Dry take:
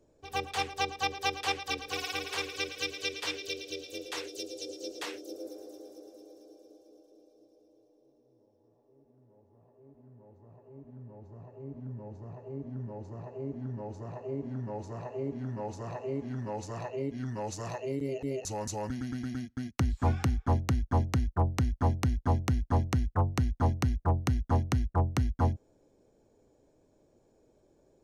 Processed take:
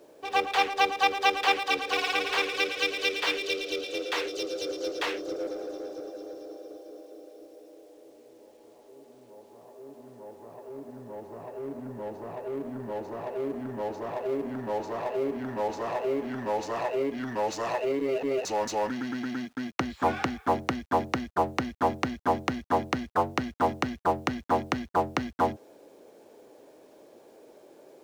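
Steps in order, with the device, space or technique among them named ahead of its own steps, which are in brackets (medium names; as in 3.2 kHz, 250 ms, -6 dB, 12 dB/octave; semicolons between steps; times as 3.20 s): phone line with mismatched companding (band-pass 380–3600 Hz; companding laws mixed up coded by mu); trim +7.5 dB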